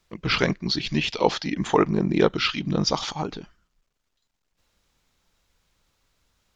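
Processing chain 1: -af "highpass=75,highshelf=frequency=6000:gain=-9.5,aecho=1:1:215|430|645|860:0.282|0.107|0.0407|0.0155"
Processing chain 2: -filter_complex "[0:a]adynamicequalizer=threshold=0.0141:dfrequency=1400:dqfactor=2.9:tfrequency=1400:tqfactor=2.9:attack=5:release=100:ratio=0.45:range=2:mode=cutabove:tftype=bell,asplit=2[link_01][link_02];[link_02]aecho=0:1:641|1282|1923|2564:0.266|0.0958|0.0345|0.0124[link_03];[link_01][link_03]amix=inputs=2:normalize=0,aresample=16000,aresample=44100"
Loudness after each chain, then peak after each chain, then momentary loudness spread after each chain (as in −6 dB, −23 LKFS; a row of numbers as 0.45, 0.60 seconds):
−24.0, −24.0 LKFS; −3.5, −3.5 dBFS; 10, 18 LU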